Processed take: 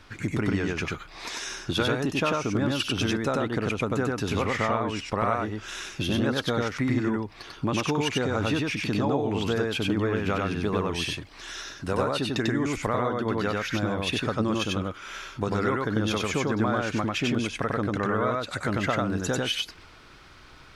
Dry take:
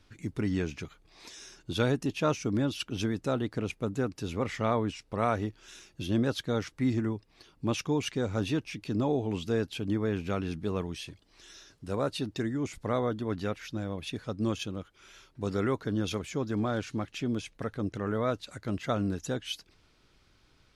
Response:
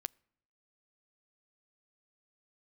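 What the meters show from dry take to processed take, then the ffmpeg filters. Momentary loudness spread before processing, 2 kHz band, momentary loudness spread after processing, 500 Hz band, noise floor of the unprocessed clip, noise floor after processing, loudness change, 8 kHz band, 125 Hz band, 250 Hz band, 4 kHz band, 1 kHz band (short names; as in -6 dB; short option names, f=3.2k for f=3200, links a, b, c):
11 LU, +10.5 dB, 7 LU, +4.5 dB, -65 dBFS, -50 dBFS, +5.0 dB, +7.0 dB, +3.5 dB, +4.0 dB, +8.5 dB, +7.5 dB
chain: -filter_complex "[0:a]equalizer=f=1.3k:w=0.6:g=8.5,acompressor=threshold=-33dB:ratio=6,asplit=2[a][b];[1:a]atrim=start_sample=2205,adelay=95[c];[b][c]afir=irnorm=-1:irlink=0,volume=1dB[d];[a][d]amix=inputs=2:normalize=0,volume=8.5dB"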